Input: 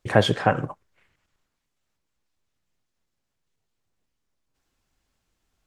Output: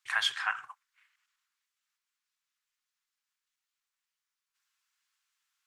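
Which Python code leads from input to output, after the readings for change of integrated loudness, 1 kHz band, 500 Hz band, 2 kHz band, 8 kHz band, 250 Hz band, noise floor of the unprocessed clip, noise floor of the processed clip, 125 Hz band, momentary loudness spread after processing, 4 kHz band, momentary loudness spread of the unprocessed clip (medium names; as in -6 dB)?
-8.5 dB, -12.0 dB, -35.0 dB, -2.0 dB, -2.0 dB, under -40 dB, -79 dBFS, under -85 dBFS, under -40 dB, 8 LU, -2.0 dB, 13 LU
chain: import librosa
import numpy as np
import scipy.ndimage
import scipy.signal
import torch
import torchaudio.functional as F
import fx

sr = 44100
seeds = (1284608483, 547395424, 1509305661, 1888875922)

y = scipy.signal.sosfilt(scipy.signal.cheby2(4, 40, 570.0, 'highpass', fs=sr, output='sos'), x)
y = y * librosa.db_to_amplitude(-2.0)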